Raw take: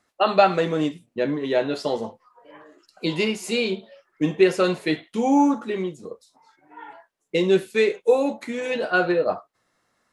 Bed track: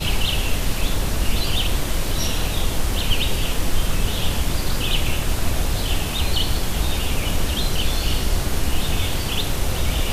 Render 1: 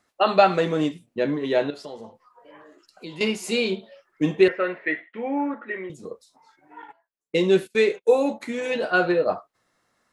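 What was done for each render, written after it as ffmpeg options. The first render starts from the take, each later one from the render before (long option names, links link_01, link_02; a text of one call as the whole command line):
ffmpeg -i in.wav -filter_complex "[0:a]asettb=1/sr,asplit=3[link_01][link_02][link_03];[link_01]atrim=end=1.704[link_04];[link_02]atrim=start=1.7:end=3.21,asetpts=PTS-STARTPTS,afade=type=in:duration=0.004:curve=qsin,afade=type=out:start_time=1.506:duration=0.004:curve=qsin,acompressor=threshold=-44dB:ratio=2:attack=3.2:release=140:knee=1:detection=peak[link_05];[link_03]atrim=start=3.206[link_06];[link_04][link_05]acrossfade=duration=0.004:curve1=hsin:curve2=qsin[link_07];[link_07][link_06]acrossfade=duration=0.004:curve1=qsin:curve2=hsin,asettb=1/sr,asplit=3[link_08][link_09][link_10];[link_08]atrim=end=4.484[link_11];[link_09]atrim=start=4.48:end=5.9,asetpts=PTS-STARTPTS,afade=type=in:duration=0.004:curve=qsin,afade=type=out:start_time=1.416:duration=0.004:curve=qsin,highpass=430,equalizer=frequency=430:width_type=q:width=4:gain=-5,equalizer=frequency=800:width_type=q:width=4:gain=-9,equalizer=frequency=1100:width_type=q:width=4:gain=-6,equalizer=frequency=1900:width_type=q:width=4:gain=10,lowpass=frequency=2200:width=0.5412,lowpass=frequency=2200:width=1.3066[link_12];[link_10]atrim=start=5.896[link_13];[link_11][link_12]acrossfade=duration=0.004:curve1=hsin:curve2=qsin[link_14];[link_14][link_13]acrossfade=duration=0.004:curve1=qsin:curve2=hsin,asettb=1/sr,asplit=3[link_15][link_16][link_17];[link_15]atrim=end=6.824[link_18];[link_16]atrim=start=6.82:end=8.4,asetpts=PTS-STARTPTS,afade=type=in:duration=0.004:curve=qsin,afade=type=out:start_time=1.576:duration=0.004:curve=qsin,agate=range=-18dB:threshold=-41dB:ratio=16:release=100:detection=peak[link_19];[link_17]atrim=start=8.396[link_20];[link_18][link_19]acrossfade=duration=0.004:curve1=hsin:curve2=qsin[link_21];[link_21][link_20]acrossfade=duration=0.004:curve1=qsin:curve2=hsin" out.wav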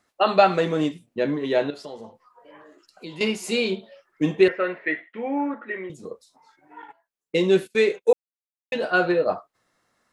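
ffmpeg -i in.wav -filter_complex "[0:a]asplit=3[link_01][link_02][link_03];[link_01]atrim=end=8.13,asetpts=PTS-STARTPTS,afade=type=out:start_time=8.126:duration=0.004:curve=hsin[link_04];[link_02]atrim=start=8.13:end=8.72,asetpts=PTS-STARTPTS,volume=0[link_05];[link_03]atrim=start=8.72,asetpts=PTS-STARTPTS,afade=type=in:duration=0.004:curve=hsin[link_06];[link_04][link_05][link_06]concat=n=3:v=0:a=1" out.wav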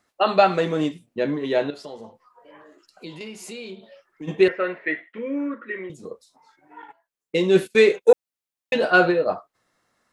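ffmpeg -i in.wav -filter_complex "[0:a]asplit=3[link_01][link_02][link_03];[link_01]afade=type=out:start_time=3.17:duration=0.02[link_04];[link_02]acompressor=threshold=-37dB:ratio=3:attack=3.2:release=140:knee=1:detection=peak,afade=type=in:start_time=3.17:duration=0.02,afade=type=out:start_time=4.27:duration=0.02[link_05];[link_03]afade=type=in:start_time=4.27:duration=0.02[link_06];[link_04][link_05][link_06]amix=inputs=3:normalize=0,asettb=1/sr,asplit=3[link_07][link_08][link_09];[link_07]atrim=end=5.184[link_10];[link_08]atrim=start=5.18:end=5.79,asetpts=PTS-STARTPTS,afade=type=in:duration=0.004:curve=qsin,afade=type=out:start_time=0.606:duration=0.004:curve=qsin,asuperstop=centerf=750:order=8:qfactor=1.9[link_11];[link_09]atrim=start=5.786[link_12];[link_10][link_11]acrossfade=duration=0.004:curve1=hsin:curve2=qsin[link_13];[link_13][link_12]acrossfade=duration=0.004:curve1=qsin:curve2=hsin,asplit=3[link_14][link_15][link_16];[link_14]afade=type=out:start_time=7.54:duration=0.02[link_17];[link_15]acontrast=25,afade=type=in:start_time=7.54:duration=0.02,afade=type=out:start_time=9.09:duration=0.02[link_18];[link_16]afade=type=in:start_time=9.09:duration=0.02[link_19];[link_17][link_18][link_19]amix=inputs=3:normalize=0" out.wav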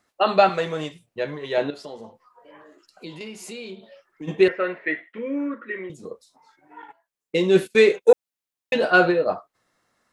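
ffmpeg -i in.wav -filter_complex "[0:a]asettb=1/sr,asplit=3[link_01][link_02][link_03];[link_01]atrim=end=0.494[link_04];[link_02]atrim=start=0.49:end=1.58,asetpts=PTS-STARTPTS,afade=type=in:duration=0.004:curve=qsin,afade=type=out:start_time=1.086:duration=0.004:curve=qsin,equalizer=frequency=260:width=1.7:gain=-14.5[link_05];[link_03]atrim=start=1.576[link_06];[link_04][link_05]acrossfade=duration=0.004:curve1=hsin:curve2=qsin[link_07];[link_07][link_06]acrossfade=duration=0.004:curve1=qsin:curve2=hsin" out.wav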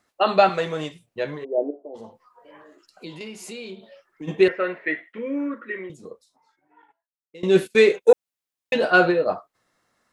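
ffmpeg -i in.wav -filter_complex "[0:a]asplit=3[link_01][link_02][link_03];[link_01]afade=type=out:start_time=1.43:duration=0.02[link_04];[link_02]asuperpass=centerf=430:order=8:qfactor=0.91,afade=type=in:start_time=1.43:duration=0.02,afade=type=out:start_time=1.94:duration=0.02[link_05];[link_03]afade=type=in:start_time=1.94:duration=0.02[link_06];[link_04][link_05][link_06]amix=inputs=3:normalize=0,asplit=2[link_07][link_08];[link_07]atrim=end=7.43,asetpts=PTS-STARTPTS,afade=type=out:start_time=5.74:duration=1.69:curve=qua:silence=0.0841395[link_09];[link_08]atrim=start=7.43,asetpts=PTS-STARTPTS,afade=type=in:duration=0.004:curve=hsin:silence=0.0841395[link_10];[link_09][link_10]concat=n=2:v=0:a=1" out.wav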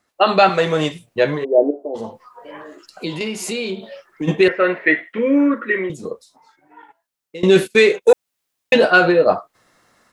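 ffmpeg -i in.wav -filter_complex "[0:a]acrossover=split=1200[link_01][link_02];[link_01]alimiter=limit=-13dB:level=0:latency=1[link_03];[link_03][link_02]amix=inputs=2:normalize=0,dynaudnorm=framelen=100:gausssize=3:maxgain=12dB" out.wav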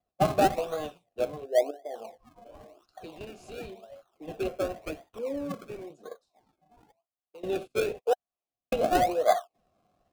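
ffmpeg -i in.wav -filter_complex "[0:a]asplit=3[link_01][link_02][link_03];[link_01]bandpass=frequency=730:width_type=q:width=8,volume=0dB[link_04];[link_02]bandpass=frequency=1090:width_type=q:width=8,volume=-6dB[link_05];[link_03]bandpass=frequency=2440:width_type=q:width=8,volume=-9dB[link_06];[link_04][link_05][link_06]amix=inputs=3:normalize=0,acrossover=split=170|890|3200[link_07][link_08][link_09][link_10];[link_09]acrusher=samples=32:mix=1:aa=0.000001:lfo=1:lforange=32:lforate=0.94[link_11];[link_07][link_08][link_11][link_10]amix=inputs=4:normalize=0" out.wav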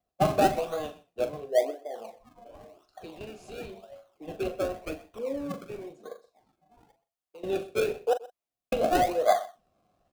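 ffmpeg -i in.wav -filter_complex "[0:a]asplit=2[link_01][link_02];[link_02]adelay=41,volume=-10.5dB[link_03];[link_01][link_03]amix=inputs=2:normalize=0,aecho=1:1:126:0.1" out.wav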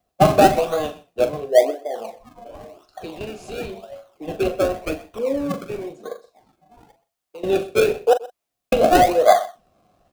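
ffmpeg -i in.wav -af "volume=10dB,alimiter=limit=-1dB:level=0:latency=1" out.wav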